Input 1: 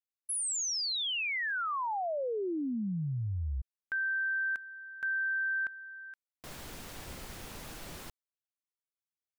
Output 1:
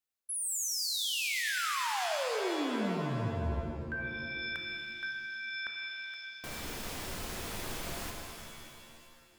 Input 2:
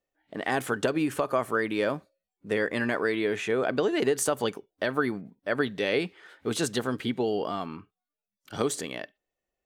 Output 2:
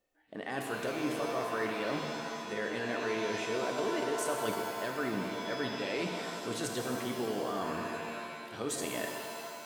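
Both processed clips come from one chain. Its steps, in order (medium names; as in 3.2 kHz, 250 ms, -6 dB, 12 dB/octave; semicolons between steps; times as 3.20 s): hum notches 50/100/150 Hz; reverse; compression 5:1, threshold -39 dBFS; reverse; pitch-shifted reverb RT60 2.1 s, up +7 st, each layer -2 dB, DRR 2.5 dB; trim +3.5 dB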